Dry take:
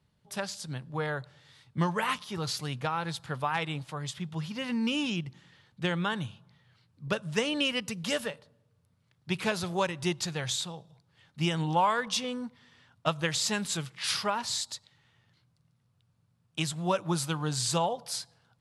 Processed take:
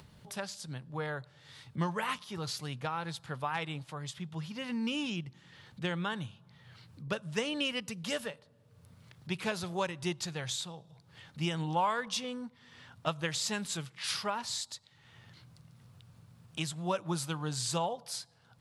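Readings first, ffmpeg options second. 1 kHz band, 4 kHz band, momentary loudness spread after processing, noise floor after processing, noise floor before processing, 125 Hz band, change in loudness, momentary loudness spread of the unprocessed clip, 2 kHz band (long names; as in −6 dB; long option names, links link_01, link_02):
−4.5 dB, −4.5 dB, 15 LU, −63 dBFS, −71 dBFS, −4.5 dB, −4.5 dB, 11 LU, −4.5 dB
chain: -af "acompressor=mode=upward:threshold=-36dB:ratio=2.5,volume=-4.5dB"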